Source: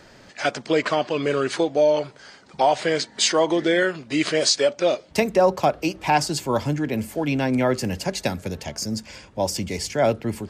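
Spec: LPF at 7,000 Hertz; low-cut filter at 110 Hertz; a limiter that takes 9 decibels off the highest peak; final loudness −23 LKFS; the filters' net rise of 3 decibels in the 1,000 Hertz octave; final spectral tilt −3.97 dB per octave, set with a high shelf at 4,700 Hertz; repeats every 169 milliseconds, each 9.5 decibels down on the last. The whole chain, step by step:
high-pass filter 110 Hz
low-pass filter 7,000 Hz
parametric band 1,000 Hz +4 dB
high-shelf EQ 4,700 Hz +4 dB
brickwall limiter −13.5 dBFS
repeating echo 169 ms, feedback 33%, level −9.5 dB
level +1 dB

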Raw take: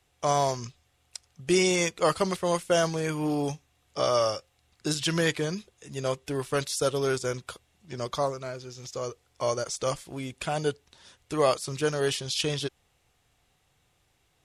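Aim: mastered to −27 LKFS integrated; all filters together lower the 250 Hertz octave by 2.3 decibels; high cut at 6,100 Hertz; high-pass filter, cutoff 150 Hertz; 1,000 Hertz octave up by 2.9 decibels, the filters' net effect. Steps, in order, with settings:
high-pass filter 150 Hz
low-pass filter 6,100 Hz
parametric band 250 Hz −3 dB
parametric band 1,000 Hz +4 dB
level +1.5 dB

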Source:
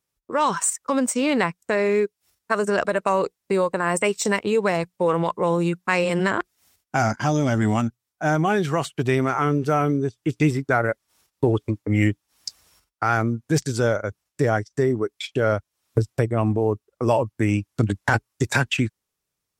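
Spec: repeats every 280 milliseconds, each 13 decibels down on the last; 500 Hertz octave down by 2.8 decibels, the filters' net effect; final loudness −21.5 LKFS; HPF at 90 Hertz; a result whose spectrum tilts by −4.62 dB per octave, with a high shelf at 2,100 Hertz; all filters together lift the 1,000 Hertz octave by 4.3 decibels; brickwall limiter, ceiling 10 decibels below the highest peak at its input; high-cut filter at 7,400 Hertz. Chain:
high-pass filter 90 Hz
low-pass filter 7,400 Hz
parametric band 500 Hz −5.5 dB
parametric band 1,000 Hz +5.5 dB
high-shelf EQ 2,100 Hz +7 dB
brickwall limiter −11 dBFS
repeating echo 280 ms, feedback 22%, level −13 dB
level +2.5 dB

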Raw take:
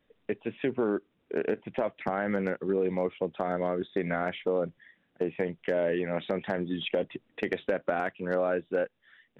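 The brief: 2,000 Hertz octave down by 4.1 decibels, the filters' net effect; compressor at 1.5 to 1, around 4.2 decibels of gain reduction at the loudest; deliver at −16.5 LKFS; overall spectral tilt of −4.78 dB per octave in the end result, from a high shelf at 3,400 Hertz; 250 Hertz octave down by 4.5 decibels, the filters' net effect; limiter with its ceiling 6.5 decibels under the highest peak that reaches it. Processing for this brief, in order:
parametric band 250 Hz −6.5 dB
parametric band 2,000 Hz −3 dB
high-shelf EQ 3,400 Hz −9 dB
downward compressor 1.5 to 1, threshold −37 dBFS
level +23 dB
brickwall limiter −4 dBFS

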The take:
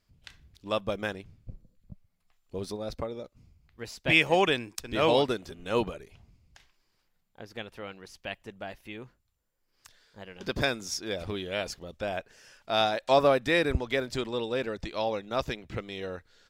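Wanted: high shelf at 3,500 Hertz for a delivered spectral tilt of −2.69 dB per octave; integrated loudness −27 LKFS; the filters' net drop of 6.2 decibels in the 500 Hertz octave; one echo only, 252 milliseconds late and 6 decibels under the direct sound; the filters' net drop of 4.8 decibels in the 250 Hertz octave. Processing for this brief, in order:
parametric band 250 Hz −4 dB
parametric band 500 Hz −7 dB
high-shelf EQ 3,500 Hz +8 dB
single-tap delay 252 ms −6 dB
level +1.5 dB

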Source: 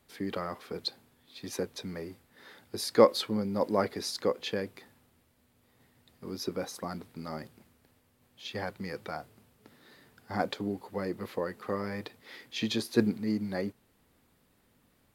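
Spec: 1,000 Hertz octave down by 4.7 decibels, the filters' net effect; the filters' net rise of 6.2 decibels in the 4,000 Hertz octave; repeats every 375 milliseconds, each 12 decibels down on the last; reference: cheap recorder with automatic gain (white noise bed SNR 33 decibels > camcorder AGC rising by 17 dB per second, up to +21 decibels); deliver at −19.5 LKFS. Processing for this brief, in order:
parametric band 1,000 Hz −6.5 dB
parametric band 4,000 Hz +7.5 dB
repeating echo 375 ms, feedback 25%, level −12 dB
white noise bed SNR 33 dB
camcorder AGC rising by 17 dB per second, up to +21 dB
level +8 dB

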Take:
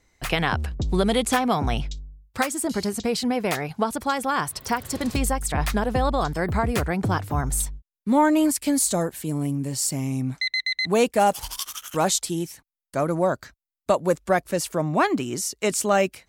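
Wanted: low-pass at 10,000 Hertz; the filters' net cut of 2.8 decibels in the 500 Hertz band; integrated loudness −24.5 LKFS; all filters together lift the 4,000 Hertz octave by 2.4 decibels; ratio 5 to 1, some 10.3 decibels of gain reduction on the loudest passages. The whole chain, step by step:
low-pass filter 10,000 Hz
parametric band 500 Hz −3.5 dB
parametric band 4,000 Hz +3 dB
downward compressor 5 to 1, threshold −28 dBFS
level +7.5 dB

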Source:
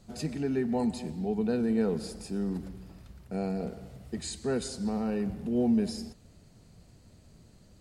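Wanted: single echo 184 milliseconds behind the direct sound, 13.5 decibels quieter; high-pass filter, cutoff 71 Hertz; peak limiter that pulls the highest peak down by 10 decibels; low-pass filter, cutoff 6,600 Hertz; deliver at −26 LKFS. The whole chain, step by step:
high-pass filter 71 Hz
low-pass filter 6,600 Hz
brickwall limiter −27.5 dBFS
single-tap delay 184 ms −13.5 dB
level +10.5 dB

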